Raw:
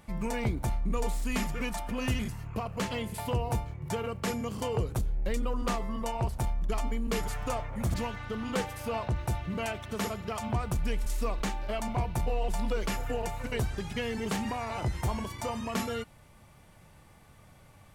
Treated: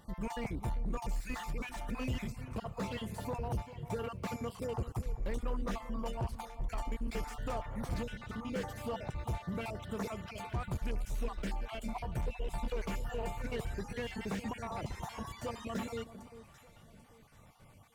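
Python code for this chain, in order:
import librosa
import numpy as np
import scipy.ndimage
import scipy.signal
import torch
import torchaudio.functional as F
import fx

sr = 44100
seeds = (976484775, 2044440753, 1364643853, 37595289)

p1 = fx.spec_dropout(x, sr, seeds[0], share_pct=34)
p2 = 10.0 ** (-25.5 / 20.0) * np.tanh(p1 / 10.0 ** (-25.5 / 20.0))
p3 = p2 + fx.echo_alternate(p2, sr, ms=395, hz=1100.0, feedback_pct=55, wet_db=-13.0, dry=0)
p4 = fx.slew_limit(p3, sr, full_power_hz=29.0)
y = F.gain(torch.from_numpy(p4), -3.0).numpy()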